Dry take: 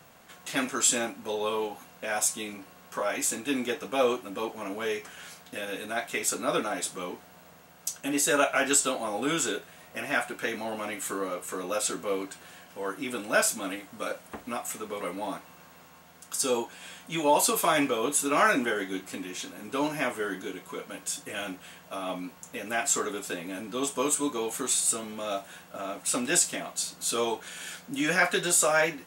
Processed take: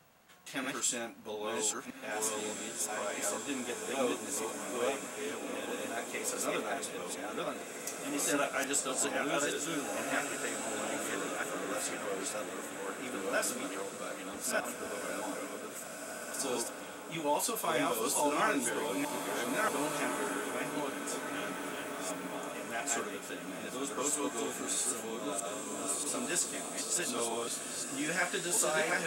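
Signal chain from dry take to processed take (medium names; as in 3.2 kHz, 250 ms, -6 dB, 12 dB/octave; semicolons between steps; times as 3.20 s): chunks repeated in reverse 635 ms, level -1 dB; 21.54–22.35 s: word length cut 8-bit, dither none; echo that smears into a reverb 1730 ms, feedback 42%, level -5.5 dB; trim -9 dB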